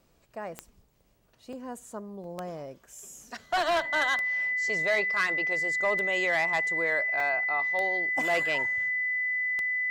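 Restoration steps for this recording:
click removal
notch filter 2,000 Hz, Q 30
repair the gap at 0:01.53/0:02.24/0:07.20, 2.2 ms

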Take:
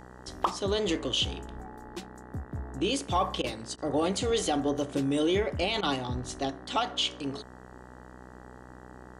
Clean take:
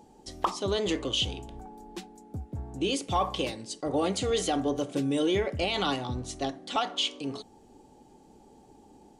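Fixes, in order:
hum removal 62.5 Hz, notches 31
repair the gap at 0:03.42/0:03.76/0:05.81, 18 ms

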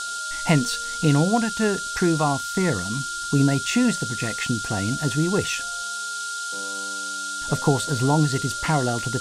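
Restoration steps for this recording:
notch filter 1,400 Hz, Q 30
noise reduction from a noise print 30 dB

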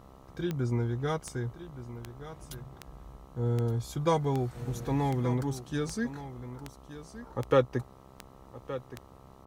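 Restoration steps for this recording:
click removal
hum removal 66 Hz, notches 20
echo removal 1,170 ms −13.5 dB

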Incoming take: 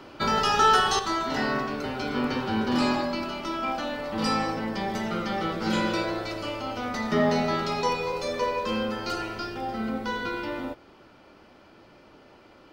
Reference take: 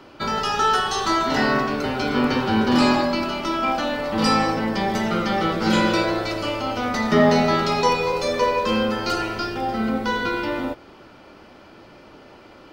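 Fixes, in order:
level 0 dB, from 0:00.99 +7 dB

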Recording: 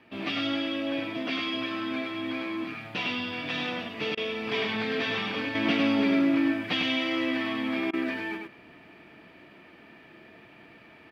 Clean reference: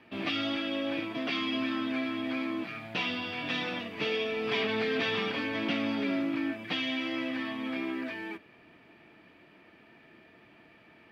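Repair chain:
repair the gap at 0:04.15/0:07.91, 22 ms
echo removal 101 ms −4 dB
level correction −4 dB, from 0:05.55

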